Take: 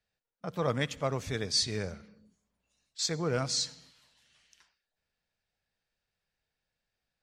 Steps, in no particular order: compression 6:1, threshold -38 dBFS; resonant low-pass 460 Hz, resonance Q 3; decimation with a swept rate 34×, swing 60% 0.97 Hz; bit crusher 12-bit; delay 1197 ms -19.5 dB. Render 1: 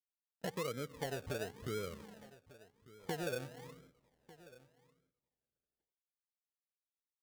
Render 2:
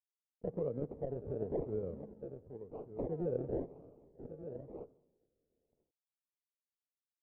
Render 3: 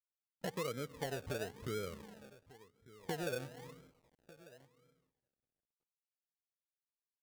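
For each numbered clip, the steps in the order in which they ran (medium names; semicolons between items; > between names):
bit crusher > resonant low-pass > compression > decimation with a swept rate > delay; bit crusher > delay > compression > decimation with a swept rate > resonant low-pass; resonant low-pass > compression > bit crusher > delay > decimation with a swept rate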